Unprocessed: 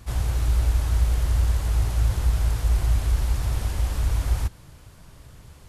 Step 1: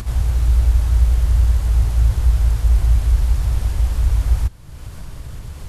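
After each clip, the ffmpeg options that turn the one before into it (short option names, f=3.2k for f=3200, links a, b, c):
-af "lowshelf=f=100:g=9,acompressor=mode=upward:threshold=-20dB:ratio=2.5"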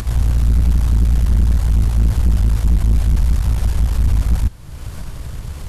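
-af "aeval=exprs='(tanh(6.31*val(0)+0.5)-tanh(0.5))/6.31':c=same,volume=6dB"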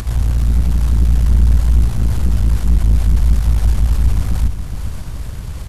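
-af "aecho=1:1:417|834|1251|1668|2085|2502:0.376|0.195|0.102|0.0528|0.0275|0.0143"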